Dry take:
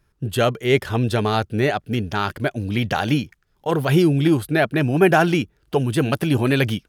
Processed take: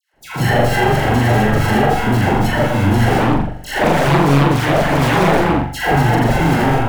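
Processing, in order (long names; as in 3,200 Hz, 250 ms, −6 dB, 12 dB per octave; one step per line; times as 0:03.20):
variable-slope delta modulation 16 kbit/s
camcorder AGC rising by 51 dB per second
low-shelf EQ 250 Hz −9 dB
sample-rate reduction 1,200 Hz, jitter 0%
all-pass dispersion lows, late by 141 ms, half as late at 1,100 Hz
hard clipping −23 dBFS, distortion −8 dB
flanger 1.6 Hz, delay 2.3 ms, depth 4.8 ms, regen +86%
flutter between parallel walls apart 7.2 metres, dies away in 0.61 s
convolution reverb, pre-delay 43 ms, DRR −8.5 dB
0:03.20–0:05.80: highs frequency-modulated by the lows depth 0.68 ms
level +6 dB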